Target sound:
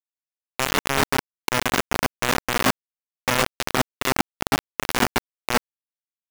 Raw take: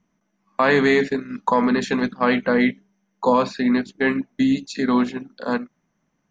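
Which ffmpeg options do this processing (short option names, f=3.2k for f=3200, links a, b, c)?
-filter_complex "[0:a]adynamicequalizer=threshold=0.0501:dfrequency=470:dqfactor=0.97:tfrequency=470:tqfactor=0.97:attack=5:release=100:ratio=0.375:range=1.5:mode=cutabove:tftype=bell,areverse,acompressor=threshold=-28dB:ratio=12,areverse,acrusher=samples=14:mix=1:aa=0.000001,asplit=2[a][b];[b]highpass=f=720:p=1,volume=29dB,asoftclip=type=tanh:threshold=-21dB[c];[a][c]amix=inputs=2:normalize=0,lowpass=f=2k:p=1,volume=-6dB,acrusher=bits=3:mix=0:aa=0.000001,volume=9dB"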